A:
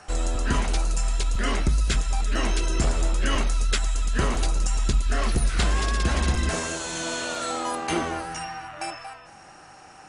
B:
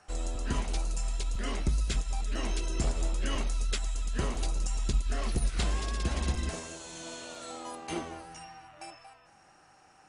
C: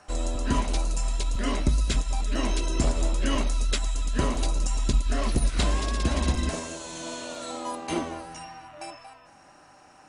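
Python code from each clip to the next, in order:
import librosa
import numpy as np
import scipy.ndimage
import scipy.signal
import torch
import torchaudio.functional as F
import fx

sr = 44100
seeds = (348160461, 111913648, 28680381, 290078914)

y1 = fx.dynamic_eq(x, sr, hz=1500.0, q=1.6, threshold_db=-46.0, ratio=4.0, max_db=-5)
y1 = fx.upward_expand(y1, sr, threshold_db=-31.0, expansion=1.5)
y1 = y1 * librosa.db_to_amplitude(-5.0)
y2 = fx.small_body(y1, sr, hz=(270.0, 590.0, 1000.0, 3900.0), ring_ms=45, db=7)
y2 = y2 * librosa.db_to_amplitude(5.0)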